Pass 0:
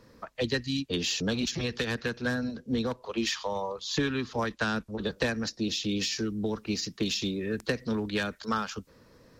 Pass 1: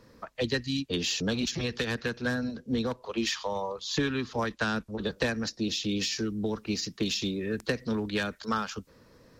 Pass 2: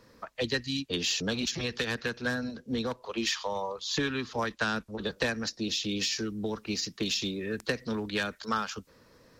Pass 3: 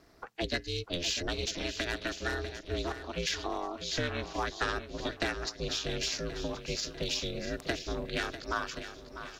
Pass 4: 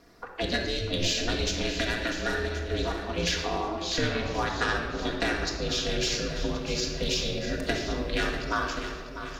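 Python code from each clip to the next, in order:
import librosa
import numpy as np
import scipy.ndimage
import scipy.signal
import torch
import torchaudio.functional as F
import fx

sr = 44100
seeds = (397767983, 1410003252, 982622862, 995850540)

y1 = x
y2 = fx.low_shelf(y1, sr, hz=480.0, db=-5.0)
y2 = y2 * librosa.db_to_amplitude(1.0)
y3 = fx.echo_swing(y2, sr, ms=1078, ratio=1.5, feedback_pct=32, wet_db=-11.0)
y3 = y3 * np.sin(2.0 * np.pi * 170.0 * np.arange(len(y3)) / sr)
y4 = fx.room_shoebox(y3, sr, seeds[0], volume_m3=1800.0, walls='mixed', distance_m=1.8)
y4 = y4 * librosa.db_to_amplitude(2.5)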